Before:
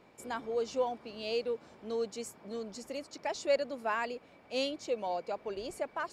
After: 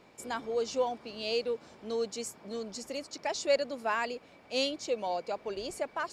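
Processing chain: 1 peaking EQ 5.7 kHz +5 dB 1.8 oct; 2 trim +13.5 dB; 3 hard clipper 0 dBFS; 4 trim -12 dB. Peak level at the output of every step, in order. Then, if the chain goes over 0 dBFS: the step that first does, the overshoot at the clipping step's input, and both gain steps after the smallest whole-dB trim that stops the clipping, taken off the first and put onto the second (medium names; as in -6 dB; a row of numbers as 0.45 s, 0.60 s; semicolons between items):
-16.5 dBFS, -3.0 dBFS, -3.0 dBFS, -15.0 dBFS; nothing clips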